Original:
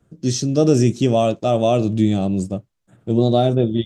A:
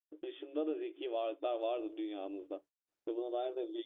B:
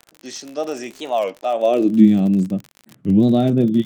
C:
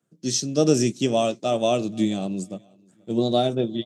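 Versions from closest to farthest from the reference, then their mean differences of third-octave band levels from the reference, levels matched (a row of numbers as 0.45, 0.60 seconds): C, B, A; 3.5, 7.5, 11.5 decibels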